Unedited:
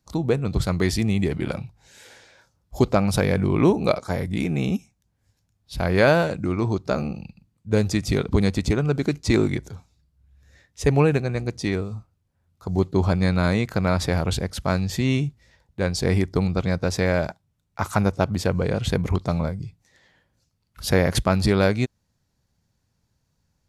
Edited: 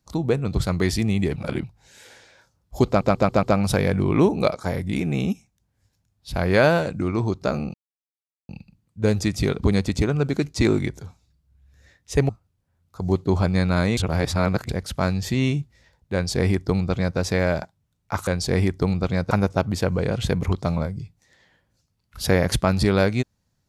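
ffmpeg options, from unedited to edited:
-filter_complex "[0:a]asplit=13[a][b][c][d][e][f][g][h][i][j][k][l][m];[a]atrim=end=1.362[n];[b]atrim=start=1.358:end=1.642,asetpts=PTS-STARTPTS,areverse[o];[c]atrim=start=1.638:end=3.012[p];[d]atrim=start=2.868:end=3.012[q];[e]atrim=start=2.868:end=3.012[r];[f]atrim=start=2.868:end=3.012[s];[g]atrim=start=2.868:end=7.18,asetpts=PTS-STARTPTS,afade=t=out:st=4.308:d=0.004:c=hsin,apad=pad_dur=0.75[t];[h]atrim=start=7.18:end=10.982,asetpts=PTS-STARTPTS,afade=t=in:d=0.004:c=hsin[u];[i]atrim=start=11.958:end=13.642[v];[j]atrim=start=13.638:end=14.362,asetpts=PTS-STARTPTS,areverse[w];[k]atrim=start=14.358:end=17.942[x];[l]atrim=start=15.808:end=16.852[y];[m]atrim=start=17.938[z];[n][o]acrossfade=d=0.004:c1=hsin:c2=hsin[aa];[aa][p]acrossfade=d=0.004:c1=hsin:c2=hsin[ab];[ab][q]acrossfade=d=0.004:c1=hsin:c2=hsin[ac];[ac][r]acrossfade=d=0.004:c1=hsin:c2=hsin[ad];[ad][s]acrossfade=d=0.004:c1=hsin:c2=hsin[ae];[t][u]concat=n=2:v=0:a=1[af];[ae][af]acrossfade=d=0.004:c1=hsin:c2=hsin[ag];[ag][v]acrossfade=d=0.004:c1=hsin:c2=hsin[ah];[ah][w]acrossfade=d=0.004:c1=hsin:c2=hsin[ai];[ai][x]acrossfade=d=0.004:c1=hsin:c2=hsin[aj];[aj][y]acrossfade=d=0.004:c1=hsin:c2=hsin[ak];[ak][z]acrossfade=d=0.004:c1=hsin:c2=hsin"

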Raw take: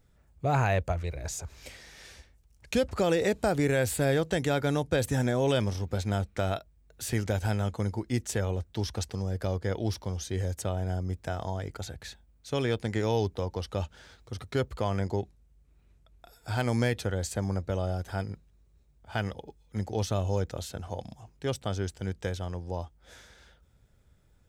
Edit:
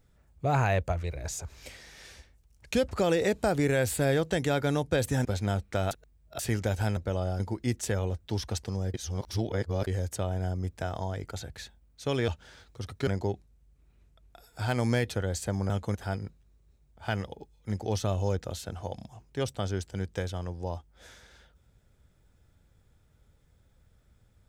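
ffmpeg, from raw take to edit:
-filter_complex "[0:a]asplit=12[a][b][c][d][e][f][g][h][i][j][k][l];[a]atrim=end=5.252[m];[b]atrim=start=5.888:end=6.552[n];[c]atrim=start=6.548:end=7.032,asetpts=PTS-STARTPTS,areverse[o];[d]atrim=start=7.028:end=7.612[p];[e]atrim=start=17.588:end=18.022[q];[f]atrim=start=7.858:end=9.402[r];[g]atrim=start=9.398:end=10.332,asetpts=PTS-STARTPTS,areverse[s];[h]atrim=start=10.328:end=12.742[t];[i]atrim=start=13.798:end=14.592[u];[j]atrim=start=14.958:end=17.592[v];[k]atrim=start=7.608:end=7.862[w];[l]atrim=start=18.018[x];[m][n]acrossfade=d=0.004:c1=hsin:c2=hsin[y];[y][o]acrossfade=d=0.004:c1=hsin:c2=hsin[z];[z][p]acrossfade=d=0.004:c1=hsin:c2=hsin[aa];[aa][q]acrossfade=d=0.004:c1=hsin:c2=hsin[ab];[ab][r]acrossfade=d=0.004:c1=hsin:c2=hsin[ac];[ac][s]acrossfade=d=0.004:c1=hsin:c2=hsin[ad];[ad][t]acrossfade=d=0.004:c1=hsin:c2=hsin[ae];[ae][u]acrossfade=d=0.004:c1=hsin:c2=hsin[af];[af][v]acrossfade=d=0.004:c1=hsin:c2=hsin[ag];[ag][w]acrossfade=d=0.004:c1=hsin:c2=hsin[ah];[ah][x]acrossfade=d=0.004:c1=hsin:c2=hsin"

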